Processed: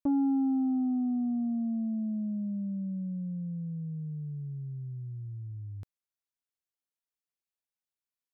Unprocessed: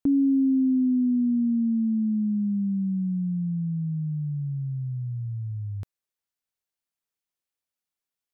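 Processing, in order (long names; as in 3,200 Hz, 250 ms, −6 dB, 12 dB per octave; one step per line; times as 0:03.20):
dynamic equaliser 320 Hz, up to +8 dB, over −41 dBFS, Q 3.9
saturating transformer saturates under 250 Hz
level −8 dB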